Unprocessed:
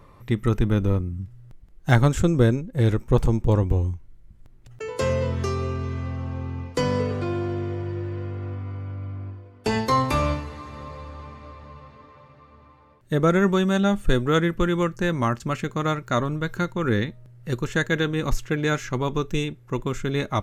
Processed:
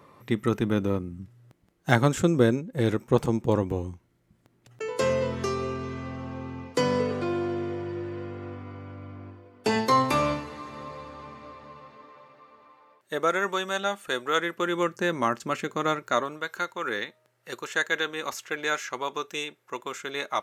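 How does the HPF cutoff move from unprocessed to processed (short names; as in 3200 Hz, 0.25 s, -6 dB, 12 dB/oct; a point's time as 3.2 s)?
11.44 s 180 Hz
13.35 s 630 Hz
14.34 s 630 Hz
14.95 s 290 Hz
15.95 s 290 Hz
16.46 s 630 Hz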